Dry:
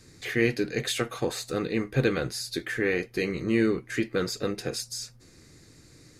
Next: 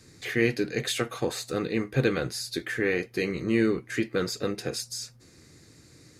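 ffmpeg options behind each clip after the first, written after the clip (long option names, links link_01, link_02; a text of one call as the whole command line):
ffmpeg -i in.wav -af "highpass=58" out.wav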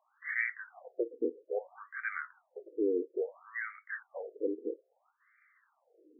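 ffmpeg -i in.wav -af "afftfilt=real='re*between(b*sr/1024,340*pow(1700/340,0.5+0.5*sin(2*PI*0.6*pts/sr))/1.41,340*pow(1700/340,0.5+0.5*sin(2*PI*0.6*pts/sr))*1.41)':imag='im*between(b*sr/1024,340*pow(1700/340,0.5+0.5*sin(2*PI*0.6*pts/sr))/1.41,340*pow(1700/340,0.5+0.5*sin(2*PI*0.6*pts/sr))*1.41)':win_size=1024:overlap=0.75,volume=-1.5dB" out.wav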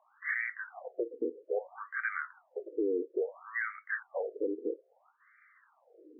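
ffmpeg -i in.wav -af "highpass=200,lowpass=2000,alimiter=level_in=6dB:limit=-24dB:level=0:latency=1:release=257,volume=-6dB,volume=7dB" out.wav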